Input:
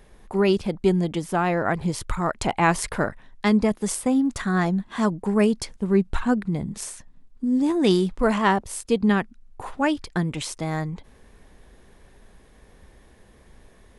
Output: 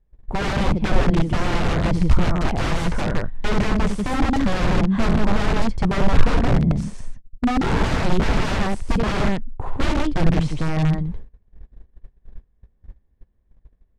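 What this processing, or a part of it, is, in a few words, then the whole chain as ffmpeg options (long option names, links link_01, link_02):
overflowing digital effects unit: -af "aecho=1:1:72.89|160.3:0.398|0.562,agate=range=-28dB:threshold=-44dB:ratio=16:detection=peak,aeval=exprs='(mod(8.91*val(0)+1,2)-1)/8.91':channel_layout=same,lowpass=9300,aemphasis=mode=reproduction:type=riaa"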